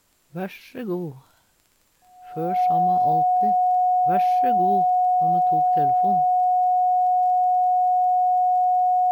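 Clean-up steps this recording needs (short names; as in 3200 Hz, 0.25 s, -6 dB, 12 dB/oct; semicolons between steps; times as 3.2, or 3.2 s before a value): de-click; notch 730 Hz, Q 30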